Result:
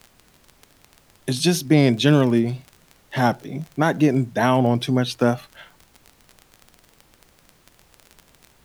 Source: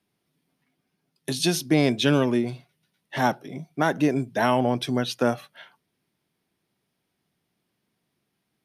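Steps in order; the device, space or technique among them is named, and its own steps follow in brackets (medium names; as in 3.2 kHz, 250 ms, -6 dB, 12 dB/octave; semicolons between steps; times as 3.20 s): bass shelf 160 Hz +10 dB; vinyl LP (wow and flutter; crackle 24 per s -31 dBFS; pink noise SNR 34 dB); trim +2 dB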